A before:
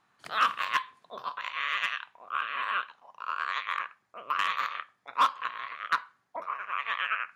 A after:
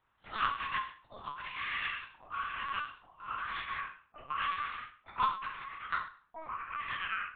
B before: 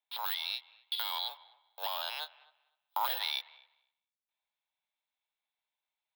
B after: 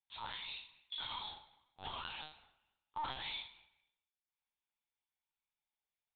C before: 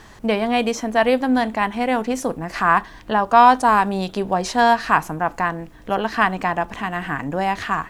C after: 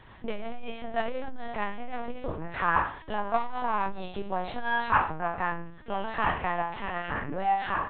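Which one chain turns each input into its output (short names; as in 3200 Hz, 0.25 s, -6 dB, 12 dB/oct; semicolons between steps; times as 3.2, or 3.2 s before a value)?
on a send: flutter echo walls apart 4.2 m, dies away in 0.43 s; on the sum: LPC vocoder at 8 kHz pitch kept; core saturation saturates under 170 Hz; gain -8.5 dB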